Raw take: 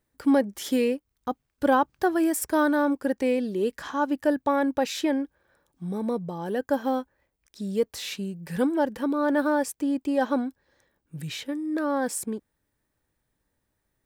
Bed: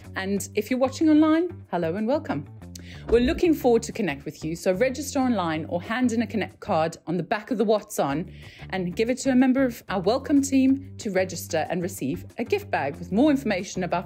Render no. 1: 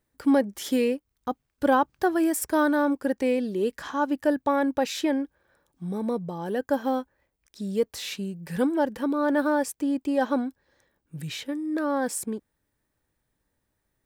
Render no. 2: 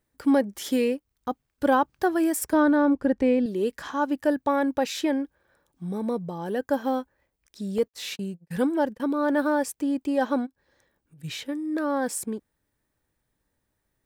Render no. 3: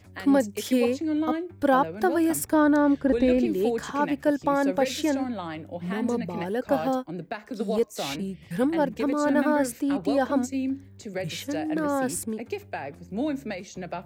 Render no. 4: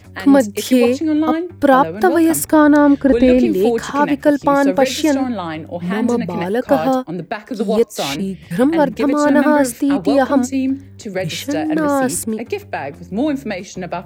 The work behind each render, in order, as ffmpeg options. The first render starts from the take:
-af anull
-filter_complex "[0:a]asettb=1/sr,asplit=3[s0][s1][s2];[s0]atrim=end=2.534[s3];[s1]atrim=start=2.53:end=3.46,asetpts=PTS-STARTPTS,afade=t=in:d=0.004:c=qsin,afade=t=out:st=0.926:d=0.004:c=qsin,aemphasis=mode=reproduction:type=bsi[s4];[s2]atrim=start=3.456[s5];[s3][s4]acrossfade=d=0.004:c1=hsin:c2=qsin[s6];[s6][s5]acrossfade=d=0.004:c1=qsin:c2=hsin,asettb=1/sr,asplit=3[s7][s8][s9];[s7]atrim=end=7.784[s10];[s8]atrim=start=7.78:end=9,asetpts=PTS-STARTPTS,afade=t=in:d=0.004:c=qsin,afade=t=out:st=1.216:d=0.004:c=qsin,agate=range=0.0112:threshold=0.0126:ratio=16:release=100:detection=peak[s11];[s9]atrim=start=8.996[s12];[s10][s11]acrossfade=d=0.004:c1=hsin:c2=qsin[s13];[s13][s12]acrossfade=d=0.004:c1=qsin:c2=hsin,asplit=3[s14][s15][s16];[s14]afade=t=out:st=10.45:d=0.02[s17];[s15]acompressor=threshold=0.00282:ratio=6:attack=3.2:release=140:knee=1:detection=peak,afade=t=in:st=10.45:d=0.02,afade=t=out:st=11.23:d=0.02[s18];[s16]afade=t=in:st=11.23:d=0.02[s19];[s17][s18][s19]amix=inputs=3:normalize=0"
-filter_complex "[1:a]volume=0.376[s0];[0:a][s0]amix=inputs=2:normalize=0"
-af "volume=3.16,alimiter=limit=0.891:level=0:latency=1"

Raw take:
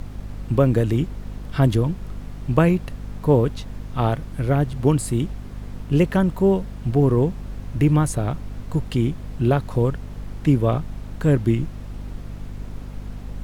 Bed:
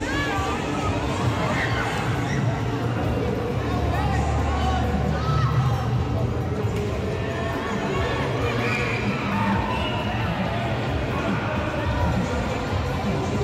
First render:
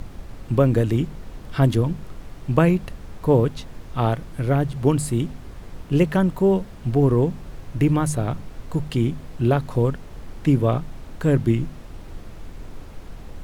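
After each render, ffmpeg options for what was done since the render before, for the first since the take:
-af "bandreject=f=50:t=h:w=4,bandreject=f=100:t=h:w=4,bandreject=f=150:t=h:w=4,bandreject=f=200:t=h:w=4,bandreject=f=250:t=h:w=4"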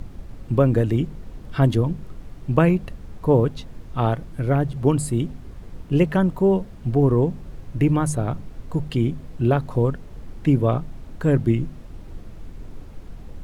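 -af "afftdn=nr=6:nf=-40"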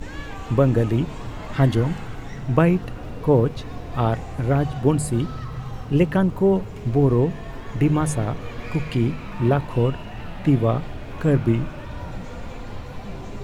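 -filter_complex "[1:a]volume=0.251[s0];[0:a][s0]amix=inputs=2:normalize=0"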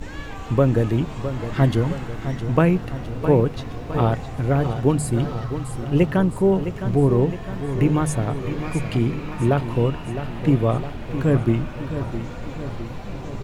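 -af "aecho=1:1:661|1322|1983|2644|3305|3966|4627:0.299|0.173|0.1|0.0582|0.0338|0.0196|0.0114"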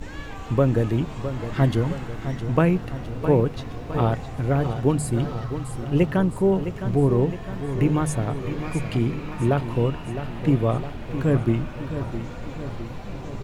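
-af "volume=0.794"

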